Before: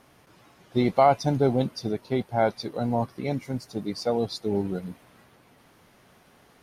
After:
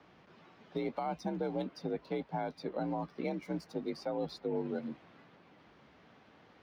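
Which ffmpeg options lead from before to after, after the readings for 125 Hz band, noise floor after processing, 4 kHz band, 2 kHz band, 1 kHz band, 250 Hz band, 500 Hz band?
-14.5 dB, -62 dBFS, -13.5 dB, -11.0 dB, -13.5 dB, -10.0 dB, -11.5 dB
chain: -filter_complex "[0:a]acrossover=split=4900[s0][s1];[s1]aeval=exprs='sgn(val(0))*max(abs(val(0))-0.0015,0)':c=same[s2];[s0][s2]amix=inputs=2:normalize=0,afreqshift=49,lowshelf=f=62:g=7,acrossover=split=380|1500|3000[s3][s4][s5][s6];[s3]acompressor=threshold=0.0224:ratio=4[s7];[s4]acompressor=threshold=0.0355:ratio=4[s8];[s5]acompressor=threshold=0.00562:ratio=4[s9];[s6]acompressor=threshold=0.00224:ratio=4[s10];[s7][s8][s9][s10]amix=inputs=4:normalize=0,alimiter=limit=0.0841:level=0:latency=1:release=268,volume=0.668"

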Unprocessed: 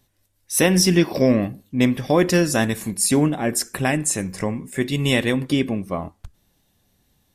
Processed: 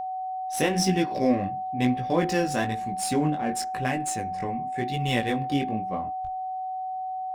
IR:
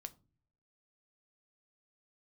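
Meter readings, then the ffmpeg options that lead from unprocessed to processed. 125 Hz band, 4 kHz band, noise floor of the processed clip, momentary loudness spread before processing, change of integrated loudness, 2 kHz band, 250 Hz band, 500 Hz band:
-7.0 dB, -8.0 dB, -32 dBFS, 9 LU, -7.0 dB, -7.0 dB, -7.0 dB, -7.0 dB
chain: -af "flanger=delay=15.5:depth=6.1:speed=1,adynamicsmooth=sensitivity=6.5:basefreq=3500,aeval=exprs='val(0)+0.0562*sin(2*PI*750*n/s)':c=same,volume=0.631"

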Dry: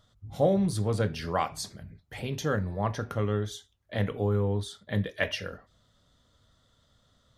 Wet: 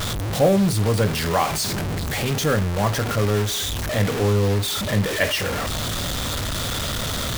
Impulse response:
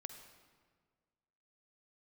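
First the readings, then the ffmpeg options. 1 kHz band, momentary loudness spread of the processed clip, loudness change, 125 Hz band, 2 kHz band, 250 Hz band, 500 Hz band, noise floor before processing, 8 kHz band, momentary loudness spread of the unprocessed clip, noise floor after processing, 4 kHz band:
+9.0 dB, 6 LU, +8.0 dB, +9.0 dB, +11.0 dB, +8.0 dB, +8.0 dB, -68 dBFS, +17.0 dB, 14 LU, -26 dBFS, +16.0 dB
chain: -af "aeval=exprs='val(0)+0.5*0.0422*sgn(val(0))':c=same,acrusher=bits=5:mix=0:aa=0.5,volume=1.78"

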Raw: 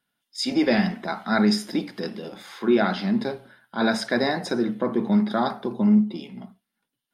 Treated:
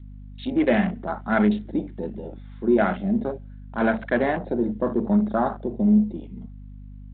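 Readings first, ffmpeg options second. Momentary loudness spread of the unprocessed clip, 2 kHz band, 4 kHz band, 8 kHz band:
16 LU, -1.0 dB, under -10 dB, under -40 dB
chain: -af "afwtdn=0.0316,aeval=exprs='val(0)+0.0112*(sin(2*PI*50*n/s)+sin(2*PI*2*50*n/s)/2+sin(2*PI*3*50*n/s)/3+sin(2*PI*4*50*n/s)/4+sin(2*PI*5*50*n/s)/5)':c=same,adynamicequalizer=threshold=0.0141:dfrequency=610:dqfactor=4:tfrequency=610:tqfactor=4:attack=5:release=100:ratio=0.375:range=2:mode=boostabove:tftype=bell" -ar 8000 -c:a adpcm_g726 -b:a 40k

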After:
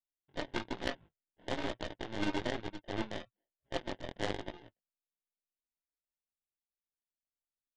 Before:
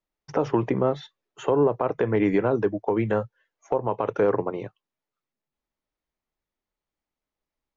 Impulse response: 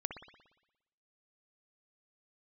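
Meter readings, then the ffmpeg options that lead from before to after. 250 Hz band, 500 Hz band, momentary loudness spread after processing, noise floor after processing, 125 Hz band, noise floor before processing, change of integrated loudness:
-14.5 dB, -18.5 dB, 12 LU, under -85 dBFS, -16.0 dB, under -85 dBFS, -14.5 dB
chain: -af "aecho=1:1:3.4:0.7,aresample=11025,acrusher=samples=9:mix=1:aa=0.000001,aresample=44100,aresample=8000,aresample=44100,flanger=delay=16:depth=7.6:speed=1.1,aeval=exprs='0.316*(cos(1*acos(clip(val(0)/0.316,-1,1)))-cos(1*PI/2))+0.0891*(cos(3*acos(clip(val(0)/0.316,-1,1)))-cos(3*PI/2))+0.02*(cos(4*acos(clip(val(0)/0.316,-1,1)))-cos(4*PI/2))+0.0398*(cos(6*acos(clip(val(0)/0.316,-1,1)))-cos(6*PI/2))+0.00501*(cos(8*acos(clip(val(0)/0.316,-1,1)))-cos(8*PI/2))':c=same,volume=0.596"

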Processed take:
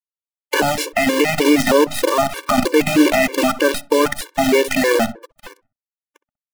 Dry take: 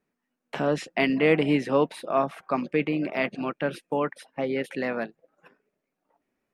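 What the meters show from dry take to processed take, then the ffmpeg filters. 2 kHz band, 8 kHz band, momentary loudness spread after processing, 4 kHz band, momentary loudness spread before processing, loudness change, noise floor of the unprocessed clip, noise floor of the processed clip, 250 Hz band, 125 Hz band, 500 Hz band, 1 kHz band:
+11.0 dB, no reading, 5 LU, +15.5 dB, 10 LU, +10.0 dB, -82 dBFS, under -85 dBFS, +9.5 dB, +4.0 dB, +9.5 dB, +10.5 dB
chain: -filter_complex "[0:a]aeval=exprs='if(lt(val(0),0),0.447*val(0),val(0))':c=same,highpass=f=190:w=0.5412,highpass=f=190:w=1.3066,highshelf=f=8500:g=6.5,bandreject=f=50:t=h:w=6,bandreject=f=100:t=h:w=6,bandreject=f=150:t=h:w=6,bandreject=f=200:t=h:w=6,bandreject=f=250:t=h:w=6,acompressor=threshold=0.0355:ratio=16,acrusher=bits=7:dc=4:mix=0:aa=0.000001,asplit=2[s0][s1];[s1]adelay=64,lowpass=f=1300:p=1,volume=0.126,asplit=2[s2][s3];[s3]adelay=64,lowpass=f=1300:p=1,volume=0.41,asplit=2[s4][s5];[s5]adelay=64,lowpass=f=1300:p=1,volume=0.41[s6];[s0][s2][s4][s6]amix=inputs=4:normalize=0,alimiter=level_in=23.7:limit=0.891:release=50:level=0:latency=1,afftfilt=real='re*gt(sin(2*PI*3.2*pts/sr)*(1-2*mod(floor(b*sr/1024/300),2)),0)':imag='im*gt(sin(2*PI*3.2*pts/sr)*(1-2*mod(floor(b*sr/1024/300),2)),0)':win_size=1024:overlap=0.75,volume=0.891"

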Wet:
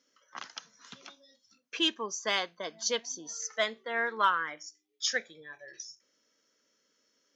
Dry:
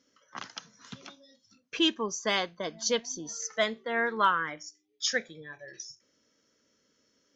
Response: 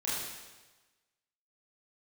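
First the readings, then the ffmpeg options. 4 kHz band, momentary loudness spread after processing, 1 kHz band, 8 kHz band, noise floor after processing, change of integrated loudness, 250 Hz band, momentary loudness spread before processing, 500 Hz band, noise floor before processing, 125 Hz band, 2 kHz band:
-1.0 dB, 20 LU, -1.5 dB, no reading, -75 dBFS, -1.5 dB, -7.0 dB, 20 LU, -4.0 dB, -72 dBFS, under -10 dB, -1.0 dB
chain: -af "aeval=exprs='0.237*(cos(1*acos(clip(val(0)/0.237,-1,1)))-cos(1*PI/2))+0.00944*(cos(3*acos(clip(val(0)/0.237,-1,1)))-cos(3*PI/2))':c=same,highpass=f=510:p=1"

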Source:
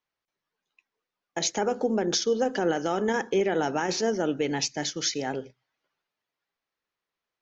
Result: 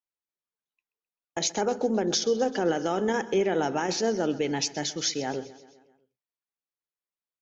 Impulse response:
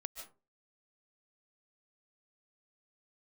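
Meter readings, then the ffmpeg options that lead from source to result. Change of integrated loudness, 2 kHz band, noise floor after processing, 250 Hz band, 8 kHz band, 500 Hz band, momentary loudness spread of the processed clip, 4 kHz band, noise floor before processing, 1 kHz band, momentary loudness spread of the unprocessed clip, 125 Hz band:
0.0 dB, -1.5 dB, under -85 dBFS, 0.0 dB, no reading, 0.0 dB, 6 LU, 0.0 dB, under -85 dBFS, -0.5 dB, 4 LU, 0.0 dB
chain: -filter_complex "[0:a]agate=range=0.178:threshold=0.00631:ratio=16:detection=peak,equalizer=f=1700:w=1.5:g=-2,asplit=2[s0][s1];[s1]aecho=0:1:130|260|390|520|650:0.126|0.073|0.0424|0.0246|0.0142[s2];[s0][s2]amix=inputs=2:normalize=0"

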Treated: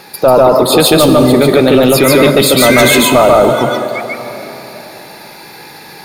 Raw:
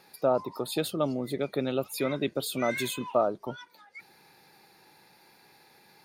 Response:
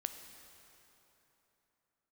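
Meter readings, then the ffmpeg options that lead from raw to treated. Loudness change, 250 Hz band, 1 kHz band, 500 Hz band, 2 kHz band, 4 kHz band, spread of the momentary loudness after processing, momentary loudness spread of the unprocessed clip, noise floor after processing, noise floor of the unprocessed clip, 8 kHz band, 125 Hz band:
+22.0 dB, +22.5 dB, +22.0 dB, +22.0 dB, +24.5 dB, +24.5 dB, 14 LU, 18 LU, -34 dBFS, -60 dBFS, +25.0 dB, +23.0 dB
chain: -filter_complex "[0:a]asplit=2[s0][s1];[1:a]atrim=start_sample=2205,adelay=143[s2];[s1][s2]afir=irnorm=-1:irlink=0,volume=1.26[s3];[s0][s3]amix=inputs=2:normalize=0,apsyclip=15,volume=0.841"

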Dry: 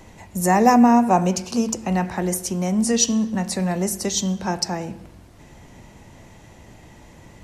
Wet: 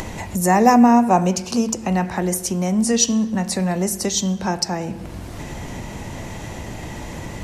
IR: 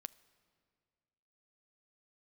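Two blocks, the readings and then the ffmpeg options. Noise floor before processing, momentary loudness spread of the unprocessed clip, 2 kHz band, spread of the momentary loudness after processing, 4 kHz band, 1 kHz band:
-47 dBFS, 10 LU, +2.0 dB, 19 LU, +2.0 dB, +1.5 dB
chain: -af "acompressor=mode=upward:threshold=0.1:ratio=2.5,volume=1.19"

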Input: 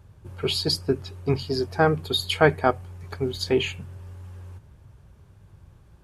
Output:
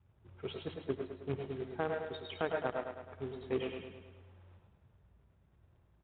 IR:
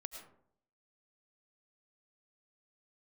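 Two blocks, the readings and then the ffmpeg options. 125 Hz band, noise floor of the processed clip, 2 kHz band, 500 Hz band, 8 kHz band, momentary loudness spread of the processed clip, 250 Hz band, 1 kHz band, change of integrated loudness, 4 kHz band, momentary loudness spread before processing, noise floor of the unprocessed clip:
-17.5 dB, -69 dBFS, -16.5 dB, -13.0 dB, under -40 dB, 14 LU, -14.0 dB, -15.5 dB, -15.0 dB, -23.0 dB, 22 LU, -53 dBFS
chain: -filter_complex "[0:a]adynamicequalizer=threshold=0.0126:dfrequency=520:dqfactor=4.5:tfrequency=520:tqfactor=4.5:attack=5:release=100:ratio=0.375:range=3.5:mode=boostabove:tftype=bell,aeval=exprs='0.794*(cos(1*acos(clip(val(0)/0.794,-1,1)))-cos(1*PI/2))+0.2*(cos(3*acos(clip(val(0)/0.794,-1,1)))-cos(3*PI/2))':c=same,aresample=11025,acrusher=bits=3:mode=log:mix=0:aa=0.000001,aresample=44100[s0];[1:a]atrim=start_sample=2205,atrim=end_sample=6174[s1];[s0][s1]afir=irnorm=-1:irlink=0,aresample=8000,aresample=44100,bandreject=f=50:t=h:w=6,bandreject=f=100:t=h:w=6,bandreject=f=150:t=h:w=6,alimiter=limit=0.112:level=0:latency=1:release=492,highpass=41,highshelf=f=2300:g=-8.5,aecho=1:1:106|212|318|424|530|636|742:0.473|0.26|0.143|0.0787|0.0433|0.0238|0.0131,volume=1.12"

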